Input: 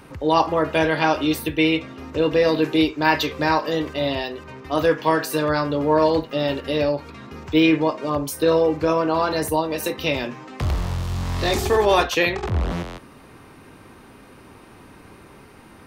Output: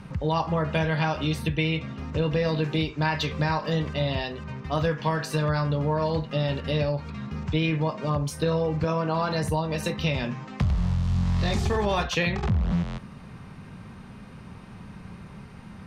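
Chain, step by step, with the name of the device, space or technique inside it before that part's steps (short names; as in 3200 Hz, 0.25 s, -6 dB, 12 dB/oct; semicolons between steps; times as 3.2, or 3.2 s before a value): jukebox (LPF 7400 Hz 12 dB/oct; resonant low shelf 240 Hz +7 dB, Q 3; compressor 5:1, threshold -19 dBFS, peak gain reduction 9 dB); 8.84–9.44 HPF 140 Hz; gain -2 dB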